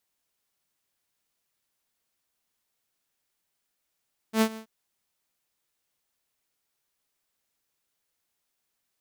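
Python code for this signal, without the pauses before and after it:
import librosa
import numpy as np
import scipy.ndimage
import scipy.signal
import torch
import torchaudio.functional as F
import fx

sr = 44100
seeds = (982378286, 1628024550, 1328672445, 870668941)

y = fx.adsr_tone(sr, wave='saw', hz=221.0, attack_ms=84.0, decay_ms=70.0, sustain_db=-19.5, held_s=0.24, release_ms=90.0, level_db=-15.0)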